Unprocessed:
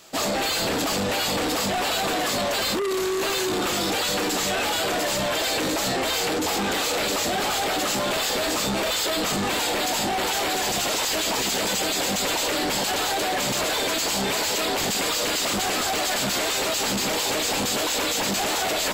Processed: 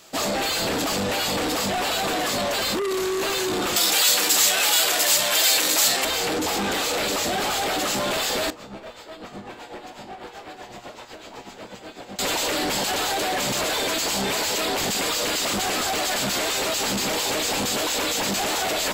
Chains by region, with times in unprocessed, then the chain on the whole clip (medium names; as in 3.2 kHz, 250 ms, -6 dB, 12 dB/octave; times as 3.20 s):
3.76–6.05 s: tilt EQ +3.5 dB/octave + hum notches 50/100/150/200/250/300/350/400/450 Hz
8.50–12.19 s: low-pass 1.4 kHz 6 dB/octave + tremolo 8 Hz, depth 66% + feedback comb 120 Hz, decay 0.66 s, mix 70%
whole clip: none